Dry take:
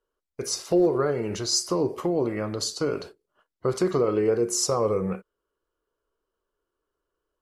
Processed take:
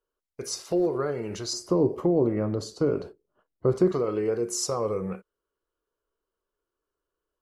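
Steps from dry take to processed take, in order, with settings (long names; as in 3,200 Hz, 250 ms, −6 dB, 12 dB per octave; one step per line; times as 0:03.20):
0:01.53–0:03.92: tilt shelving filter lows +8.5 dB, about 1,100 Hz
level −4 dB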